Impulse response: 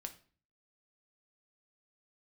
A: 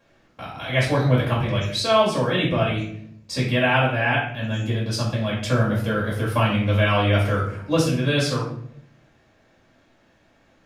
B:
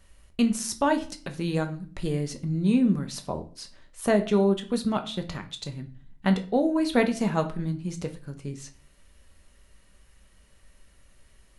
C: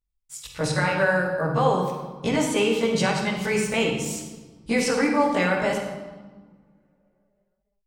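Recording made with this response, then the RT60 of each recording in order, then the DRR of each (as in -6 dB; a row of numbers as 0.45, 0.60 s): B; 0.65, 0.45, 1.4 s; -7.0, 5.5, -7.5 dB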